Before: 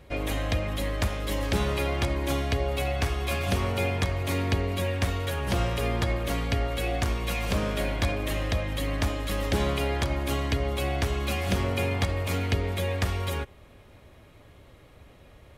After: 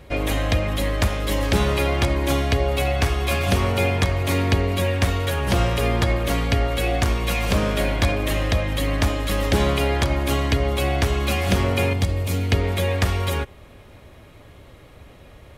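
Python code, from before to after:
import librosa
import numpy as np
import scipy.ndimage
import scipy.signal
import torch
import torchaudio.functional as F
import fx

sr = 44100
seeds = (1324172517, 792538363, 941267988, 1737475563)

y = fx.peak_eq(x, sr, hz=1300.0, db=-9.5, octaves=2.8, at=(11.93, 12.52))
y = F.gain(torch.from_numpy(y), 6.5).numpy()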